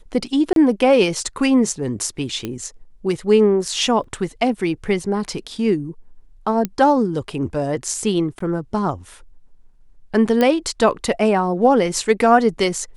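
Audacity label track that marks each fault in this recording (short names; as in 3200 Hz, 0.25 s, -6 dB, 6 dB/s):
0.530000	0.560000	gap 32 ms
2.450000	2.450000	pop -12 dBFS
4.040000	4.040000	gap 3.2 ms
6.650000	6.650000	pop -9 dBFS
8.390000	8.400000	gap 14 ms
10.410000	10.410000	pop -6 dBFS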